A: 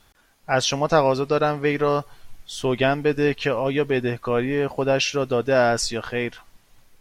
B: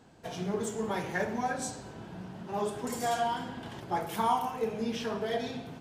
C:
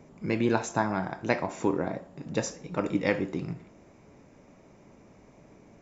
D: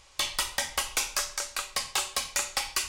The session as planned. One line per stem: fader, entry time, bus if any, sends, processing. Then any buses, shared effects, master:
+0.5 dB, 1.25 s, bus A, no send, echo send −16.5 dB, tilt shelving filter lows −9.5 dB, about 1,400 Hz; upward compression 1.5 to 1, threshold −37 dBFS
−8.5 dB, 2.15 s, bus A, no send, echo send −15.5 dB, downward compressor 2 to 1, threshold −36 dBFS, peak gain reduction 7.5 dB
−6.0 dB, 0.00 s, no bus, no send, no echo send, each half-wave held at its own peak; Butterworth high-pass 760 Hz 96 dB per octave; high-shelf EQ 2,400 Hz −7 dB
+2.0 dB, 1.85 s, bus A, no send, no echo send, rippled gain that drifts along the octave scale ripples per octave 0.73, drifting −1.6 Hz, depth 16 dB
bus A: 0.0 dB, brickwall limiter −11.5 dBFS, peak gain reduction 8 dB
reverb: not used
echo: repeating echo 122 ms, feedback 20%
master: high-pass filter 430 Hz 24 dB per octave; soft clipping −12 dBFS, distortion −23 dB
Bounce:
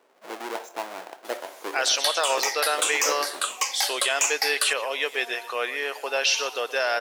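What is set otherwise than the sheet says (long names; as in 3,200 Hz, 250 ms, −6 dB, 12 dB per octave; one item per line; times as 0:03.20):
stem C: missing Butterworth high-pass 760 Hz 96 dB per octave
master: missing soft clipping −12 dBFS, distortion −23 dB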